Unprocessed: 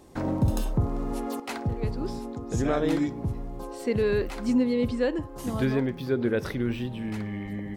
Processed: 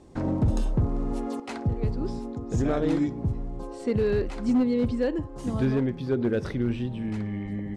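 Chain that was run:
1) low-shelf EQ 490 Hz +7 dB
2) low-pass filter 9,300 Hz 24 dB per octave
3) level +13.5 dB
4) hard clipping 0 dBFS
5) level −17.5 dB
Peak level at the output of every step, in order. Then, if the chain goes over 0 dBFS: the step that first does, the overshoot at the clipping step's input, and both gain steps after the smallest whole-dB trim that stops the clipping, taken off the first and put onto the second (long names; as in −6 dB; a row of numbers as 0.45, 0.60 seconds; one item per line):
−7.5, −7.5, +6.0, 0.0, −17.5 dBFS
step 3, 6.0 dB
step 3 +7.5 dB, step 5 −11.5 dB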